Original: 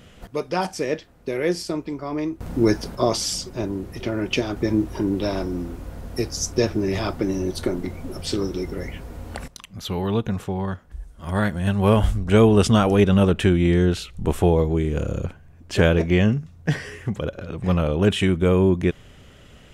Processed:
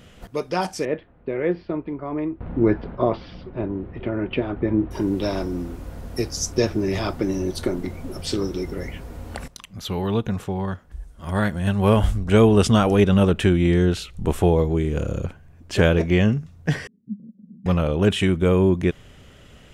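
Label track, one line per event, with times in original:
0.850000	4.910000	Bessel low-pass filter 1,900 Hz, order 8
16.870000	17.660000	flat-topped band-pass 210 Hz, Q 5

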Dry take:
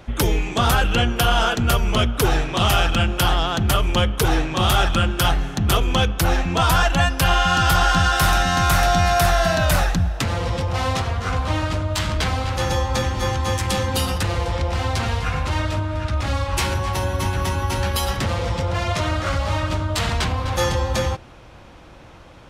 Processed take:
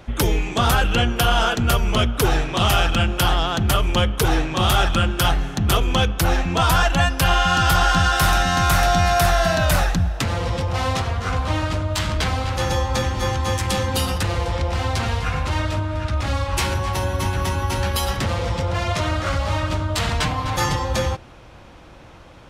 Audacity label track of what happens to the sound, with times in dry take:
20.190000	20.850000	comb filter 6.7 ms, depth 63%

